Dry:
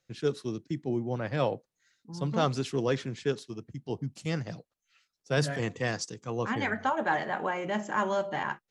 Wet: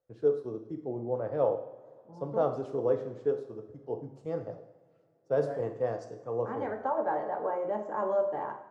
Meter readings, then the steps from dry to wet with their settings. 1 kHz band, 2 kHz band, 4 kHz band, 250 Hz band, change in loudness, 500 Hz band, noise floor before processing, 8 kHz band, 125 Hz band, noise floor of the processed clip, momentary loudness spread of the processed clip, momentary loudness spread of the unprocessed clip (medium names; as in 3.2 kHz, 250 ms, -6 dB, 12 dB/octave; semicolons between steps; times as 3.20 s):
-2.5 dB, -14.0 dB, under -20 dB, -6.0 dB, -1.0 dB, +3.0 dB, -85 dBFS, under -20 dB, -9.5 dB, -65 dBFS, 10 LU, 8 LU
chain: FFT filter 100 Hz 0 dB, 180 Hz -5 dB, 530 Hz +12 dB, 1.2 kHz +1 dB, 2.5 kHz -16 dB; two-slope reverb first 0.65 s, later 3 s, from -19 dB, DRR 5 dB; trim -8.5 dB